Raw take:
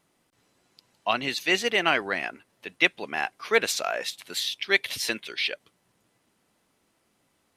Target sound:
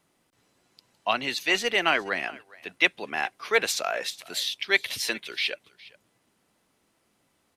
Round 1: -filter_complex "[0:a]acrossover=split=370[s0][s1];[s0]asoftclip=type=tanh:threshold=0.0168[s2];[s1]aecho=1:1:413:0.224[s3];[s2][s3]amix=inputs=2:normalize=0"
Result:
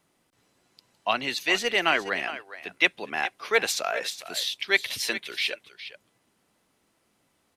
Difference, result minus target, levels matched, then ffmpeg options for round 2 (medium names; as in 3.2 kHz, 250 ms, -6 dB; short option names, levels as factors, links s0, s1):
echo-to-direct +8.5 dB
-filter_complex "[0:a]acrossover=split=370[s0][s1];[s0]asoftclip=type=tanh:threshold=0.0168[s2];[s1]aecho=1:1:413:0.0841[s3];[s2][s3]amix=inputs=2:normalize=0"